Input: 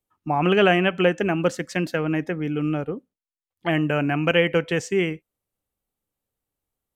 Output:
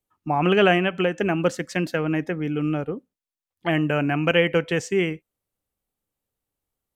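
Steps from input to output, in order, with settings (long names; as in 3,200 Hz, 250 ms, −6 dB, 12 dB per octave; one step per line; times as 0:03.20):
0:00.77–0:01.19: downward compressor 2.5 to 1, threshold −19 dBFS, peak gain reduction 4.5 dB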